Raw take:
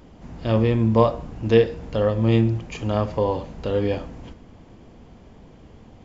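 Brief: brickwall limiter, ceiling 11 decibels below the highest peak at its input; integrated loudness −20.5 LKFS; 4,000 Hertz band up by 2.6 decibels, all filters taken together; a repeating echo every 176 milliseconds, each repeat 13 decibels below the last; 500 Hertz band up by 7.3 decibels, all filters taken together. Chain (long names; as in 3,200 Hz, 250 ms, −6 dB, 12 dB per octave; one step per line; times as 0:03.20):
parametric band 500 Hz +8 dB
parametric band 4,000 Hz +3.5 dB
brickwall limiter −9.5 dBFS
repeating echo 176 ms, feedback 22%, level −13 dB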